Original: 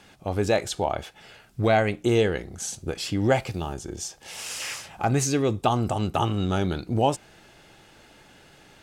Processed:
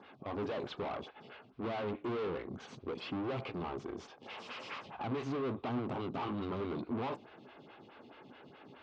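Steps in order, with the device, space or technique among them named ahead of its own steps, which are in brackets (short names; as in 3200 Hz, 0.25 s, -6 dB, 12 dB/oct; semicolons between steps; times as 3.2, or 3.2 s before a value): vibe pedal into a guitar amplifier (photocell phaser 4.7 Hz; tube stage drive 39 dB, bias 0.55; speaker cabinet 96–3700 Hz, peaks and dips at 130 Hz +3 dB, 250 Hz +8 dB, 410 Hz +4 dB, 1100 Hz +6 dB, 1800 Hz -4 dB); gain +1.5 dB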